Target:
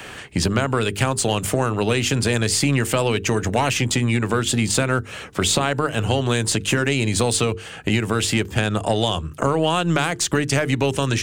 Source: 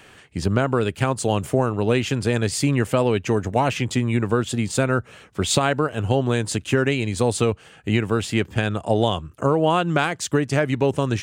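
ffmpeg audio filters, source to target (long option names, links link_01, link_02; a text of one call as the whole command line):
ffmpeg -i in.wav -filter_complex "[0:a]acrossover=split=91|1600|5000[link_01][link_02][link_03][link_04];[link_01]acompressor=threshold=-43dB:ratio=4[link_05];[link_02]acompressor=threshold=-30dB:ratio=4[link_06];[link_03]acompressor=threshold=-37dB:ratio=4[link_07];[link_04]acompressor=threshold=-34dB:ratio=4[link_08];[link_05][link_06][link_07][link_08]amix=inputs=4:normalize=0,asplit=2[link_09][link_10];[link_10]alimiter=limit=-24dB:level=0:latency=1,volume=0dB[link_11];[link_09][link_11]amix=inputs=2:normalize=0,aeval=exprs='0.266*(cos(1*acos(clip(val(0)/0.266,-1,1)))-cos(1*PI/2))+0.0188*(cos(3*acos(clip(val(0)/0.266,-1,1)))-cos(3*PI/2))+0.00473*(cos(6*acos(clip(val(0)/0.266,-1,1)))-cos(6*PI/2))':channel_layout=same,bandreject=frequency=50:width_type=h:width=6,bandreject=frequency=100:width_type=h:width=6,bandreject=frequency=150:width_type=h:width=6,bandreject=frequency=200:width_type=h:width=6,bandreject=frequency=250:width_type=h:width=6,bandreject=frequency=300:width_type=h:width=6,bandreject=frequency=350:width_type=h:width=6,bandreject=frequency=400:width_type=h:width=6,bandreject=frequency=450:width_type=h:width=6,volume=8dB" out.wav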